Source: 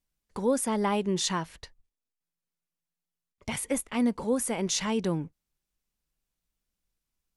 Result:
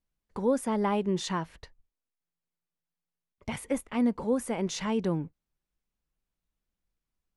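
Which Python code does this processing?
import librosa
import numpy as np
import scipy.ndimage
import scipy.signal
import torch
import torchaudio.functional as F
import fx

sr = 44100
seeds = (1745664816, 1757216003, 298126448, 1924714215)

y = fx.high_shelf(x, sr, hz=3300.0, db=-11.0)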